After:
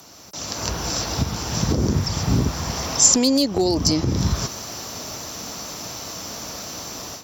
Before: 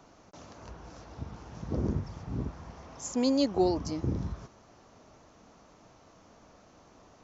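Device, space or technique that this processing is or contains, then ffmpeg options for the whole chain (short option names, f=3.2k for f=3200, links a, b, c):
FM broadcast chain: -filter_complex "[0:a]highpass=72,bandreject=f=6.6k:w=5.4,dynaudnorm=f=340:g=3:m=13.5dB,acrossover=split=660|6100[a][b][c];[a]acompressor=threshold=-19dB:ratio=4[d];[b]acompressor=threshold=-36dB:ratio=4[e];[c]acompressor=threshold=-57dB:ratio=4[f];[d][e][f]amix=inputs=3:normalize=0,aemphasis=mode=production:type=75fm,alimiter=limit=-17.5dB:level=0:latency=1:release=439,asoftclip=type=hard:threshold=-19dB,lowpass=f=15k:w=0.5412,lowpass=f=15k:w=1.3066,aemphasis=mode=production:type=75fm,lowshelf=f=110:g=5,volume=7dB"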